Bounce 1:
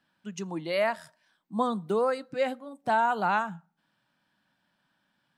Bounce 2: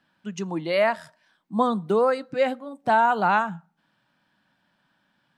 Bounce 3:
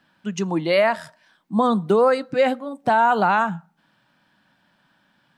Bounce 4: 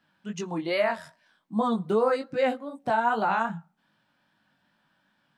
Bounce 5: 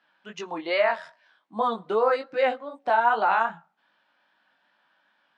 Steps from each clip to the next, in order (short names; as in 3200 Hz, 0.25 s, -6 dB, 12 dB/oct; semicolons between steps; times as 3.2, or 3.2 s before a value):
high shelf 6900 Hz -8.5 dB; gain +5.5 dB
limiter -14.5 dBFS, peak gain reduction 6 dB; gain +6 dB
chorus 2.5 Hz, delay 18 ms, depth 4.4 ms; gain -4 dB
BPF 490–4000 Hz; gain +4 dB